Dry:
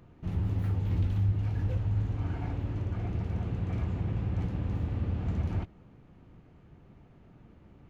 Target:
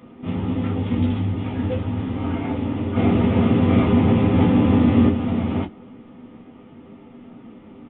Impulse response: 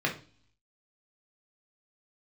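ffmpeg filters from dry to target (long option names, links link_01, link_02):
-filter_complex "[0:a]asplit=3[link_01][link_02][link_03];[link_01]afade=type=out:start_time=2.95:duration=0.02[link_04];[link_02]acontrast=76,afade=type=in:start_time=2.95:duration=0.02,afade=type=out:start_time=5.08:duration=0.02[link_05];[link_03]afade=type=in:start_time=5.08:duration=0.02[link_06];[link_04][link_05][link_06]amix=inputs=3:normalize=0[link_07];[1:a]atrim=start_sample=2205,atrim=end_sample=3528,asetrate=74970,aresample=44100[link_08];[link_07][link_08]afir=irnorm=-1:irlink=0,aresample=8000,aresample=44100,volume=9dB"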